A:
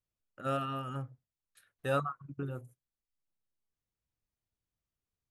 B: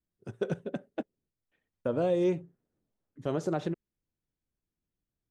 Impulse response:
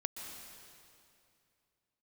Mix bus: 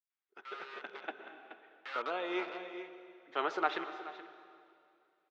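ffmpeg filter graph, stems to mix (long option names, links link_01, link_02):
-filter_complex "[0:a]asoftclip=type=tanh:threshold=-34.5dB,acrusher=bits=5:mix=0:aa=0.000001,volume=-13.5dB,asplit=2[link_01][link_02];[1:a]adelay=100,volume=-4.5dB,asplit=3[link_03][link_04][link_05];[link_04]volume=-3dB[link_06];[link_05]volume=-11dB[link_07];[link_02]apad=whole_len=238404[link_08];[link_03][link_08]sidechaincompress=threshold=-60dB:ratio=3:attack=16:release=545[link_09];[2:a]atrim=start_sample=2205[link_10];[link_06][link_10]afir=irnorm=-1:irlink=0[link_11];[link_07]aecho=0:1:426:1[link_12];[link_01][link_09][link_11][link_12]amix=inputs=4:normalize=0,equalizer=frequency=650:width_type=o:width=1.1:gain=-8.5,dynaudnorm=framelen=530:gausssize=3:maxgain=8.5dB,highpass=frequency=500:width=0.5412,highpass=frequency=500:width=1.3066,equalizer=frequency=540:width_type=q:width=4:gain=-10,equalizer=frequency=820:width_type=q:width=4:gain=6,equalizer=frequency=1300:width_type=q:width=4:gain=6,equalizer=frequency=2100:width_type=q:width=4:gain=5,lowpass=frequency=3900:width=0.5412,lowpass=frequency=3900:width=1.3066"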